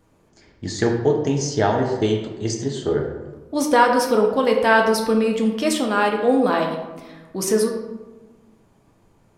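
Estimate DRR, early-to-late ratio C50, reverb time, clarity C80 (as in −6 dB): 1.0 dB, 5.0 dB, 1.2 s, 7.0 dB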